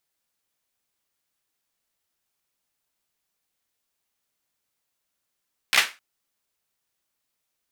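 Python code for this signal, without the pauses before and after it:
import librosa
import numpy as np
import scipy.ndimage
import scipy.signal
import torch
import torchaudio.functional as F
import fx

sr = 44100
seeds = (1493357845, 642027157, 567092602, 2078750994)

y = fx.drum_clap(sr, seeds[0], length_s=0.26, bursts=4, spacing_ms=15, hz=2000.0, decay_s=0.26)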